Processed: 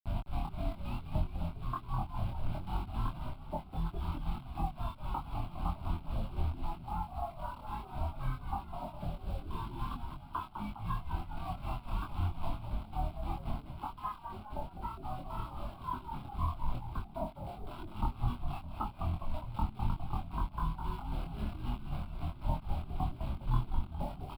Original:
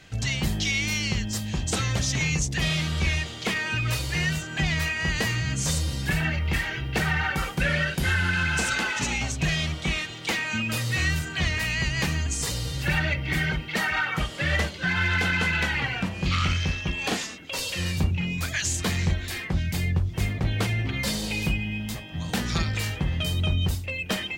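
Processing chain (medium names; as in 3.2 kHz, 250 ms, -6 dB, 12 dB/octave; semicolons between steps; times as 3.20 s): octave divider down 2 oct, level -2 dB; cascade formant filter a; peaking EQ 290 Hz +8.5 dB 0.57 oct; hum notches 50/100/150 Hz; granulator 248 ms, grains 3.8 per s, pitch spread up and down by 7 st; bit crusher 9-bit; doubling 24 ms -2.5 dB; frequency-shifting echo 204 ms, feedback 52%, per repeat -100 Hz, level -7 dB; gain riding within 4 dB 0.5 s; tilt EQ -3 dB/octave; static phaser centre 1.8 kHz, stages 6; trim +7 dB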